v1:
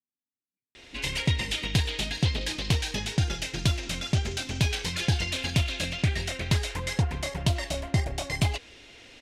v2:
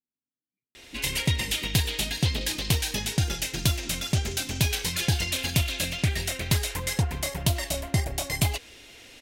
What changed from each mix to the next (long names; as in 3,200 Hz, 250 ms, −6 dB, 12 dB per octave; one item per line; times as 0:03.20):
speech +4.5 dB
master: remove high-frequency loss of the air 69 metres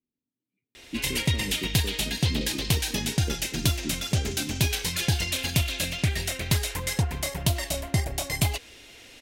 speech +11.0 dB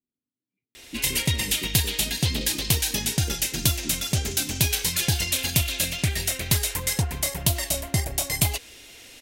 speech −3.0 dB
background: add high-shelf EQ 6,500 Hz +10 dB